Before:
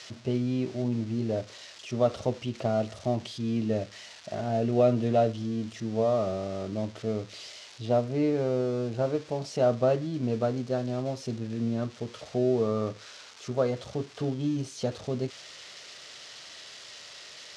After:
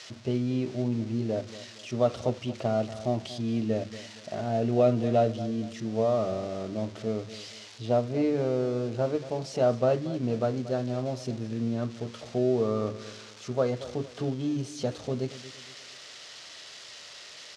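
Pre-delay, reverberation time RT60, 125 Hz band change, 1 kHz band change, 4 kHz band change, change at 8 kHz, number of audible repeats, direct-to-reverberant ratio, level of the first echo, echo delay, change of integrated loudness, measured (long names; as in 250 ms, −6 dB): no reverb audible, no reverb audible, 0.0 dB, 0.0 dB, 0.0 dB, 0.0 dB, 3, no reverb audible, −15.5 dB, 232 ms, 0.0 dB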